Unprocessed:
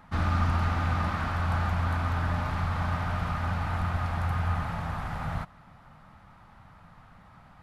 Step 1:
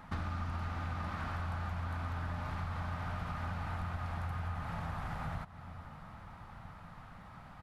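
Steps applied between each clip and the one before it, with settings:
slap from a distant wall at 220 metres, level −24 dB
downward compressor 5 to 1, threshold −38 dBFS, peak gain reduction 15 dB
level +1.5 dB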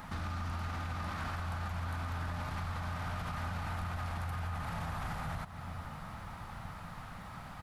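high-shelf EQ 4,300 Hz +10 dB
brickwall limiter −35 dBFS, peak gain reduction 8.5 dB
level +5 dB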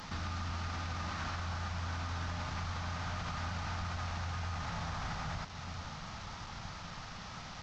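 linear delta modulator 32 kbit/s, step −43 dBFS
high-shelf EQ 3,600 Hz +7 dB
level −1 dB

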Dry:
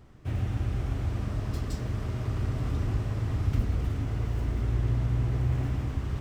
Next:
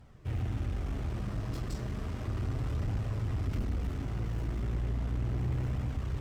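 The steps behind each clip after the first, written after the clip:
flanger 0.34 Hz, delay 1.2 ms, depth 5.2 ms, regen −50%
tube saturation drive 29 dB, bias 0.4
level +3 dB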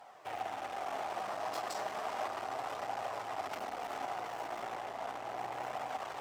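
brickwall limiter −28.5 dBFS, peak gain reduction 4.5 dB
high-pass with resonance 750 Hz, resonance Q 4.3
level +5.5 dB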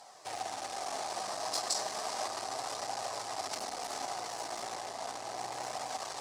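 flat-topped bell 6,600 Hz +15 dB
notch filter 1,400 Hz, Q 17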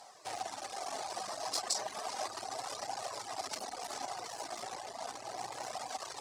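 reverb reduction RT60 1.2 s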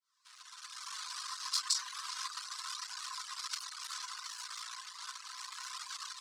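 fade in at the beginning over 1.03 s
automatic gain control gain up to 4 dB
Chebyshev high-pass with heavy ripple 1,000 Hz, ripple 6 dB
level +1 dB

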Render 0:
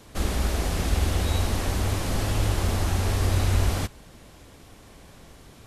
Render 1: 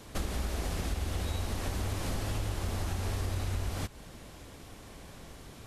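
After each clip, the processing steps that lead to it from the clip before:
downward compressor 6 to 1, threshold −30 dBFS, peak gain reduction 12.5 dB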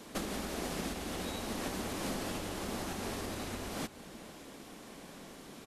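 low shelf with overshoot 140 Hz −13 dB, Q 1.5
slap from a distant wall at 79 metres, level −17 dB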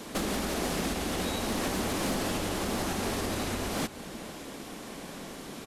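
in parallel at −3 dB: brickwall limiter −30.5 dBFS, peak gain reduction 7 dB
on the sum: hard clipping −27.5 dBFS, distortion −22 dB
level +3.5 dB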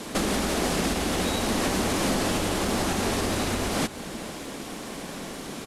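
variable-slope delta modulation 64 kbit/s
level +5.5 dB

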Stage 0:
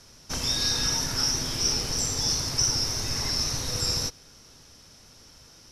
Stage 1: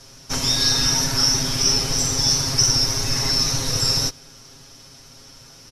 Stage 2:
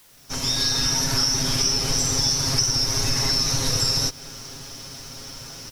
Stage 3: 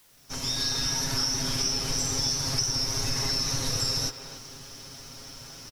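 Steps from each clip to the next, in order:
comb filter 7.4 ms, depth 82%; level +4.5 dB
fade in at the beginning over 1.37 s; downward compressor, threshold −26 dBFS, peak gain reduction 12.5 dB; bit-depth reduction 10 bits, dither triangular; level +7 dB
far-end echo of a speakerphone 280 ms, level −8 dB; level −6 dB

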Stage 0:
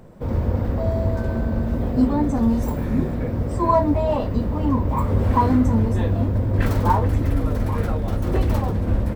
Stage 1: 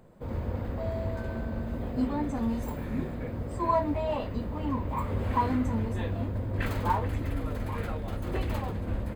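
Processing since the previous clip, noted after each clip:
low-shelf EQ 410 Hz −3.5 dB
notch filter 5,600 Hz, Q 7
dynamic equaliser 2,500 Hz, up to +6 dB, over −44 dBFS, Q 1
level −8 dB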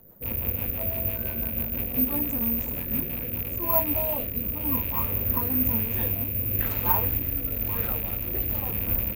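loose part that buzzes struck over −41 dBFS, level −30 dBFS
rotating-speaker cabinet horn 6 Hz, later 1 Hz, at 0:02.87
bad sample-rate conversion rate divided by 3×, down none, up zero stuff

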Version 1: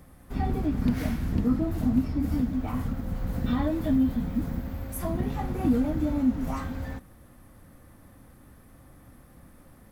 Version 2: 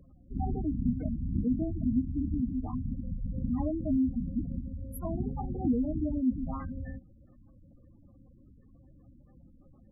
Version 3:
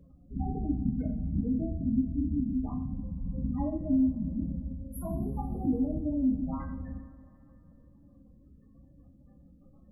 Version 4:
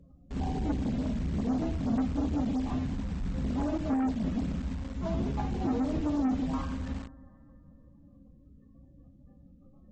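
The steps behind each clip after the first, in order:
gate on every frequency bin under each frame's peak −15 dB strong; level −4 dB
coupled-rooms reverb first 0.49 s, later 2.8 s, from −18 dB, DRR 1.5 dB; level −2.5 dB
in parallel at −3.5 dB: bit reduction 7 bits; on the sum: soft clipping −26 dBFS, distortion −9 dB; AAC 24 kbit/s 48,000 Hz

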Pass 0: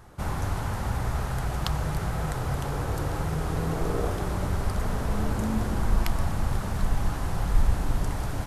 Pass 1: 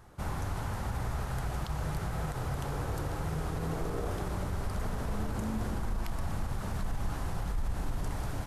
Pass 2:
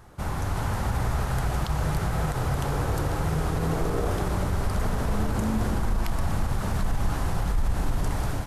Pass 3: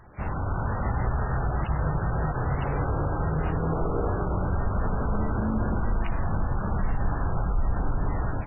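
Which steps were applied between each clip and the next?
brickwall limiter −19.5 dBFS, peak gain reduction 10 dB; level −5 dB
automatic gain control gain up to 3 dB; level +5 dB
MP3 8 kbit/s 11,025 Hz

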